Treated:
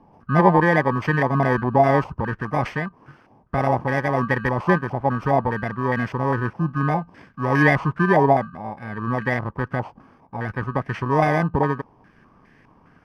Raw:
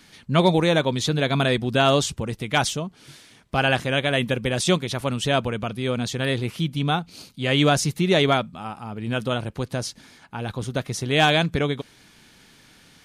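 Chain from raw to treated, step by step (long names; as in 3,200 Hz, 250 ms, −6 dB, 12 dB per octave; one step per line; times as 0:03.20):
samples in bit-reversed order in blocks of 32 samples
low-pass on a step sequencer 4.9 Hz 860–1,800 Hz
level +2 dB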